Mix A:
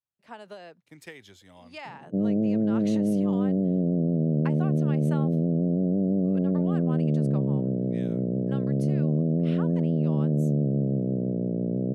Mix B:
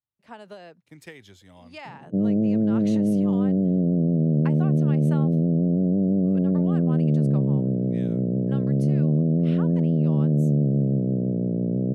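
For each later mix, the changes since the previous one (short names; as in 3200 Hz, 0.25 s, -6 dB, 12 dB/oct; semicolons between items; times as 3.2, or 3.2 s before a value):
master: add low shelf 200 Hz +6.5 dB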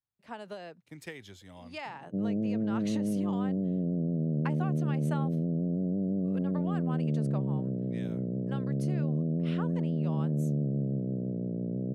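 background -9.0 dB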